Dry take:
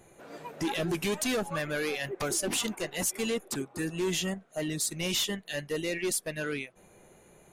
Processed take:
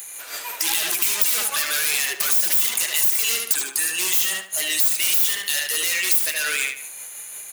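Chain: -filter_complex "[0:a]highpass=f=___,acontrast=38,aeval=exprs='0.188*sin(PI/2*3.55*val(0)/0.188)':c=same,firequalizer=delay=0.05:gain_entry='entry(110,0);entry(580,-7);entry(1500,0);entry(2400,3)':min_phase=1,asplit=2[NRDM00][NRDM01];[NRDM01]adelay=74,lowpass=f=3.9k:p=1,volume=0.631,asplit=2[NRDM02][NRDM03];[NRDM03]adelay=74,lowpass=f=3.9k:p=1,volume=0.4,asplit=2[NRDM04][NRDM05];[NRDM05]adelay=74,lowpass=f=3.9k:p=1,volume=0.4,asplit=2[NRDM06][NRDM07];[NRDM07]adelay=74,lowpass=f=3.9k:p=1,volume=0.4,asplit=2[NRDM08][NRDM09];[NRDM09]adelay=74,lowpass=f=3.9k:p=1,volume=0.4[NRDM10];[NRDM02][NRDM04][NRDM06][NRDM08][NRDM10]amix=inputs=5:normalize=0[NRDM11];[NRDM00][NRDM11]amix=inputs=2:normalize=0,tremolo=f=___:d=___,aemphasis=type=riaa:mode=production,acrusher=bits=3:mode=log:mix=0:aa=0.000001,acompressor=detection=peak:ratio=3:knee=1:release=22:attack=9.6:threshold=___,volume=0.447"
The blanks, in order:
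680, 5.7, 0.28, 0.141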